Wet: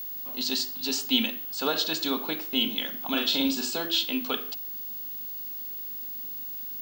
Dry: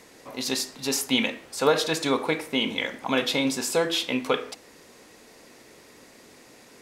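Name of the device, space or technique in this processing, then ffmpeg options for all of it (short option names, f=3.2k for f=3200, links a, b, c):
old television with a line whistle: -filter_complex "[0:a]asettb=1/sr,asplit=3[a][b][c];[a]atrim=end=3.104[d];[b]atrim=start=3.1:end=3.73,asetpts=PTS-STARTPTS,afade=t=in:d=0.004:c=qsin,afade=t=out:st=0.626:d=0.004:c=qsin,asplit=2[e][f];[f]adelay=44,volume=-5dB[g];[e][g]amix=inputs=2:normalize=0,atrim=end_sample=27783[h];[c]atrim=start=3.726[i];[d][h]acrossfade=d=0.004:c1=hsin:c2=qsin[j];[j][i]acrossfade=d=0.004:c1=qsin:c2=hsin,highpass=f=190:w=0.5412,highpass=f=190:w=1.3066,equalizer=f=230:t=q:w=4:g=4,equalizer=f=500:t=q:w=4:g=-10,equalizer=f=1k:t=q:w=4:g=-5,equalizer=f=2.1k:t=q:w=4:g=-10,equalizer=f=3k:t=q:w=4:g=7,equalizer=f=4.3k:t=q:w=4:g=8,lowpass=f=7.5k:w=0.5412,lowpass=f=7.5k:w=1.3066,aeval=exprs='val(0)+0.0316*sin(2*PI*15625*n/s)':c=same,volume=-3.5dB"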